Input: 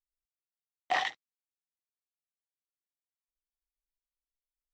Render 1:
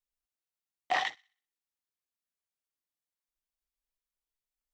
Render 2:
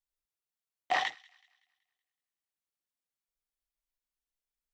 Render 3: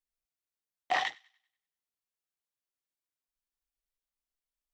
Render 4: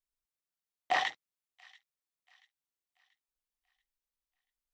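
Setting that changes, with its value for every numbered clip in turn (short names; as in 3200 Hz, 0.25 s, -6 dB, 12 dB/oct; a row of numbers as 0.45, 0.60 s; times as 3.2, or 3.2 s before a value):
thin delay, time: 62, 188, 97, 684 ms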